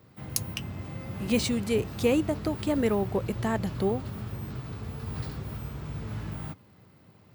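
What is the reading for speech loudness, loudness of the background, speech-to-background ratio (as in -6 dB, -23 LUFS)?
-29.0 LUFS, -37.0 LUFS, 8.0 dB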